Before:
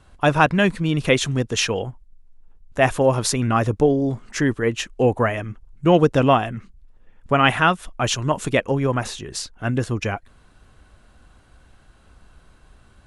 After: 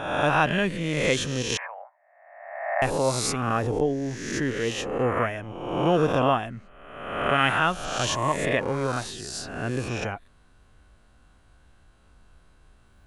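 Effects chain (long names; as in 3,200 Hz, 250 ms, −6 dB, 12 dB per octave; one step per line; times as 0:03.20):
peak hold with a rise ahead of every peak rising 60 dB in 1.12 s
0:01.57–0:02.82: Chebyshev band-pass filter 590–2,200 Hz, order 5
0:08.09–0:08.77: hollow resonant body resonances 1,100/1,700 Hz, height 9 dB
level −8.5 dB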